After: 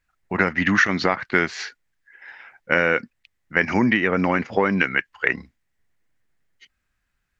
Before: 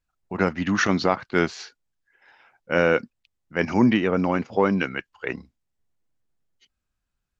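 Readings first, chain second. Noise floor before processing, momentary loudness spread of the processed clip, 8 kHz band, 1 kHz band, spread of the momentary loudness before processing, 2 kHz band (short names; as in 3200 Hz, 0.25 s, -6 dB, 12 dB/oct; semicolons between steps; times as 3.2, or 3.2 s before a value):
-80 dBFS, 8 LU, n/a, +2.0 dB, 13 LU, +7.5 dB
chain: bell 1900 Hz +12 dB 0.78 oct; compressor 4:1, threshold -20 dBFS, peak gain reduction 11 dB; gain +4.5 dB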